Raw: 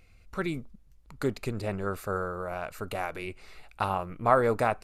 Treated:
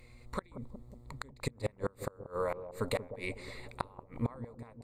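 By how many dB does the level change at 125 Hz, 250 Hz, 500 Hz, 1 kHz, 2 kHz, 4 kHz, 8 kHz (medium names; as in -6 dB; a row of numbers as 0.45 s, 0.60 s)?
-5.0 dB, -7.5 dB, -8.5 dB, -13.5 dB, -9.5 dB, -3.0 dB, -2.5 dB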